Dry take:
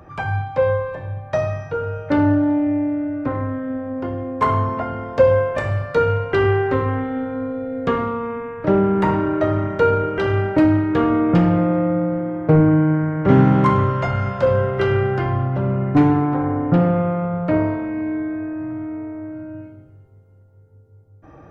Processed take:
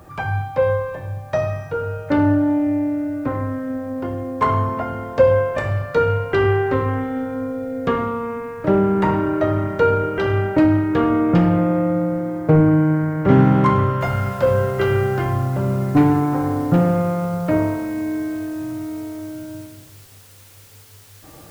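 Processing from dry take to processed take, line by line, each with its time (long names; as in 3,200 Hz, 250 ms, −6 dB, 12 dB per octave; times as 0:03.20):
0:14.01: noise floor change −61 dB −48 dB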